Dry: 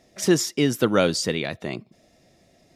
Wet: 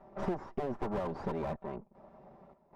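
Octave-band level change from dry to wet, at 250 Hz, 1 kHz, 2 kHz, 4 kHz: -15.5 dB, -7.0 dB, -20.5 dB, -31.0 dB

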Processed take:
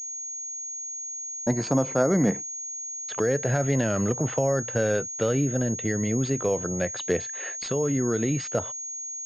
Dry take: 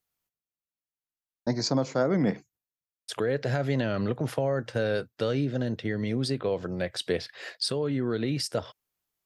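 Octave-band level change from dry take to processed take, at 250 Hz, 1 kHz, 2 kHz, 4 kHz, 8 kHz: +3.0 dB, +3.0 dB, +2.5 dB, -7.0 dB, +17.5 dB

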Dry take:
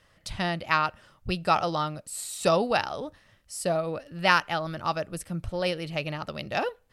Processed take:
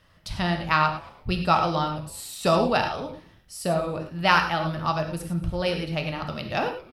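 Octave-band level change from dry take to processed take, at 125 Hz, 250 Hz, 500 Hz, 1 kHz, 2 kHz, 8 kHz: +6.0 dB, +5.0 dB, +1.5 dB, +3.5 dB, +1.5 dB, -2.5 dB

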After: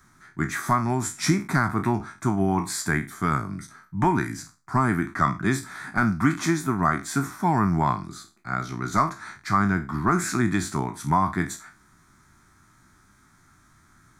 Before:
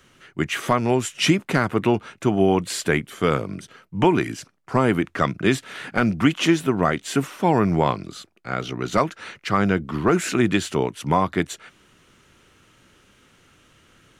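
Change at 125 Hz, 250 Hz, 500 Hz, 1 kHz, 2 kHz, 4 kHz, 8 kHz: -0.5 dB, -3.0 dB, -9.5 dB, 0.0 dB, -2.0 dB, -9.0 dB, 0.0 dB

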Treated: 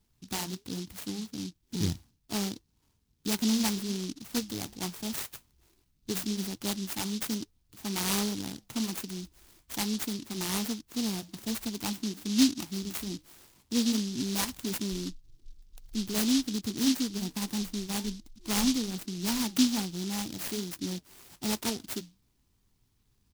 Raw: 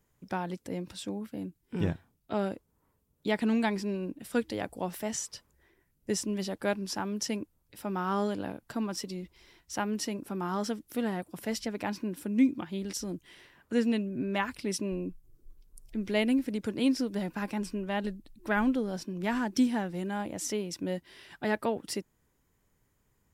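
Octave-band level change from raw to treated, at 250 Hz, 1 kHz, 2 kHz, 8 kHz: +0.5 dB, -5.5 dB, -4.0 dB, +6.0 dB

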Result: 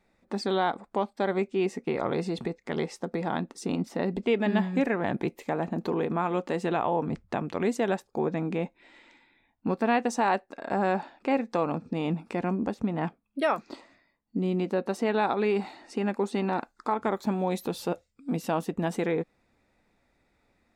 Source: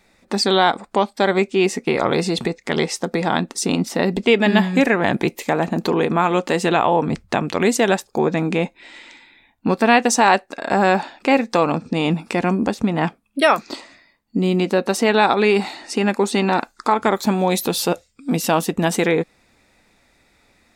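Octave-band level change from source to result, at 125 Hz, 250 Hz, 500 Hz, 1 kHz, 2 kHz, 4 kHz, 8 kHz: -9.0 dB, -9.0 dB, -9.5 dB, -10.5 dB, -13.5 dB, -17.0 dB, -19.0 dB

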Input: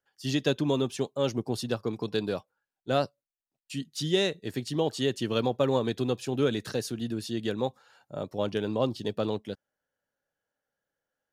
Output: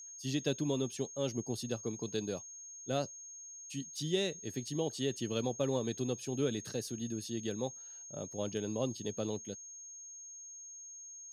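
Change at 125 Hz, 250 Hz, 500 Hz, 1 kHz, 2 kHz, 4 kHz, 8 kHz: -6.0 dB, -6.5 dB, -7.5 dB, -11.0 dB, -9.5 dB, -7.5 dB, +5.0 dB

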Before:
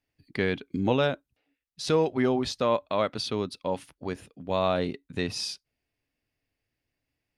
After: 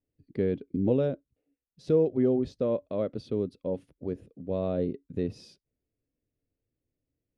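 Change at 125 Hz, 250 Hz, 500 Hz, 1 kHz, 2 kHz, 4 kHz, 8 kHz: 0.0 dB, +0.5 dB, -0.5 dB, -14.5 dB, under -15 dB, under -15 dB, under -20 dB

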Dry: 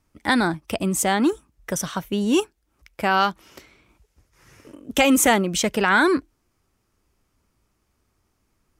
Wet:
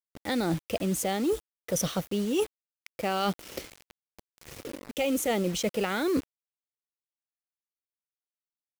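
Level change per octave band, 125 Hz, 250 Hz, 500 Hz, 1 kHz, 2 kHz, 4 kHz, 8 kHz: -4.0 dB, -7.5 dB, -5.0 dB, -11.5 dB, -14.5 dB, -8.0 dB, -9.0 dB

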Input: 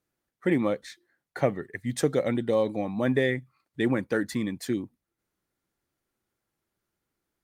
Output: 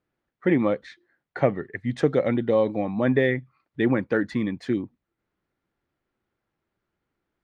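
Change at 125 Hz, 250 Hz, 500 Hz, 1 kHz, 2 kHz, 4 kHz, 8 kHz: +3.5 dB, +3.5 dB, +3.5 dB, +3.5 dB, +3.0 dB, -2.0 dB, under -10 dB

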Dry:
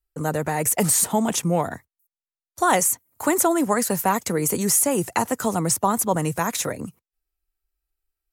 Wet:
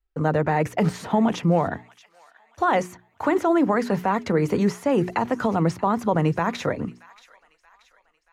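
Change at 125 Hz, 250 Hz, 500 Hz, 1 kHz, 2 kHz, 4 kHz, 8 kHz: +3.0 dB, +2.0 dB, +1.5 dB, -0.5 dB, -0.5 dB, -6.0 dB, -22.5 dB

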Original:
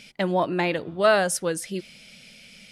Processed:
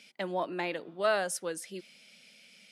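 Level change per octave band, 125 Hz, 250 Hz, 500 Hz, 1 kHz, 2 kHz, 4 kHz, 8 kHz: -15.5 dB, -12.0 dB, -9.0 dB, -9.0 dB, -8.5 dB, -8.5 dB, -8.5 dB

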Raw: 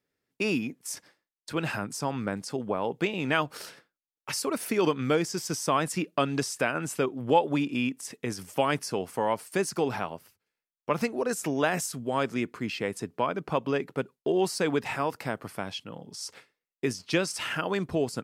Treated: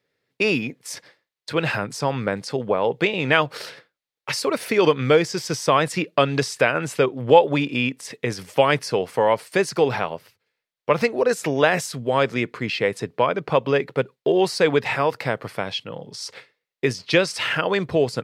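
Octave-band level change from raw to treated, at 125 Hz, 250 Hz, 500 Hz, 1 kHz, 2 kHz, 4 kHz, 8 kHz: +7.0 dB, +4.0 dB, +9.5 dB, +7.0 dB, +9.0 dB, +8.5 dB, +1.5 dB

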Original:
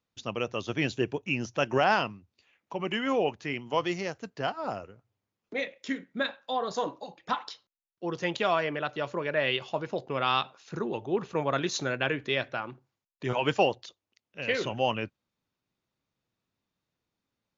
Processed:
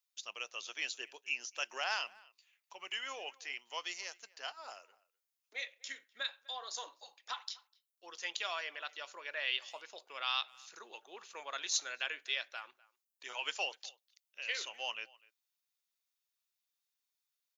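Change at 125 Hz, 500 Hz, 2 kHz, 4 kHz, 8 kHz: under -40 dB, -21.0 dB, -7.0 dB, -3.0 dB, no reading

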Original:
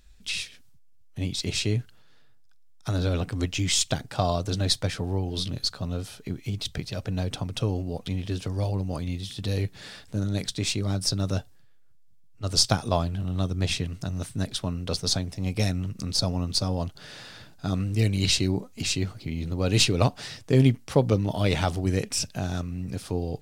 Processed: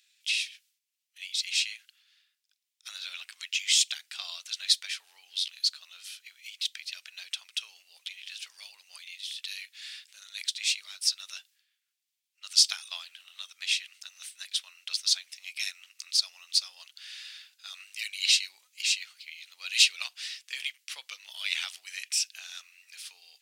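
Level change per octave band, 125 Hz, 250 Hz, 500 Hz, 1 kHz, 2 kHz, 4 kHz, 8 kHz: under -40 dB, under -40 dB, under -35 dB, -21.0 dB, +1.5 dB, +2.0 dB, 0.0 dB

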